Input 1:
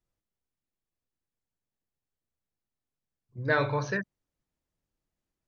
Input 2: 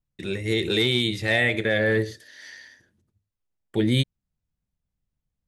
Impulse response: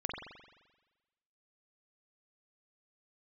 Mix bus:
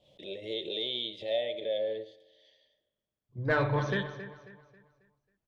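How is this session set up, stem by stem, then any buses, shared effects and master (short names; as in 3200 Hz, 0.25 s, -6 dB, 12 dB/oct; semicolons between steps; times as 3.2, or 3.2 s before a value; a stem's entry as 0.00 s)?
-0.5 dB, 0.00 s, send -11.5 dB, echo send -11 dB, one diode to ground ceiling -20.5 dBFS
+1.0 dB, 0.00 s, send -17 dB, no echo send, vocal rider within 3 dB 0.5 s; double band-pass 1400 Hz, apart 2.5 oct; backwards sustainer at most 120 dB/s; auto duck -8 dB, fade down 1.85 s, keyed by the first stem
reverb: on, RT60 1.2 s, pre-delay 43 ms
echo: feedback echo 0.271 s, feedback 38%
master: high shelf 2900 Hz -9.5 dB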